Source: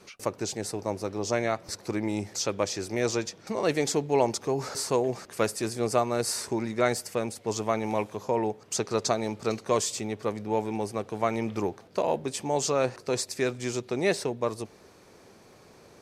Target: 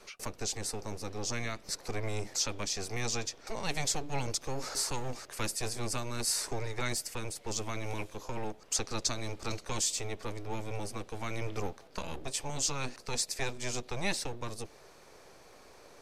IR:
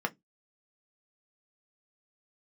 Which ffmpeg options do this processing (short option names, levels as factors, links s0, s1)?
-filter_complex "[0:a]acrossover=split=370|2000[s0][s1][s2];[s0]aeval=exprs='abs(val(0))':c=same[s3];[s1]acompressor=threshold=0.01:ratio=6[s4];[s3][s4][s2]amix=inputs=3:normalize=0"